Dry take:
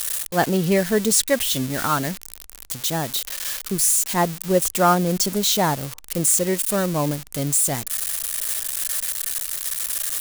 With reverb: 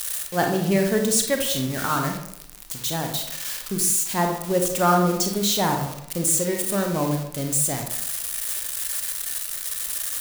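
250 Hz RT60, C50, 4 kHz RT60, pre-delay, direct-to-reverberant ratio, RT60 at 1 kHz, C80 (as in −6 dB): 0.85 s, 5.0 dB, 0.45 s, 30 ms, 3.0 dB, 0.75 s, 9.0 dB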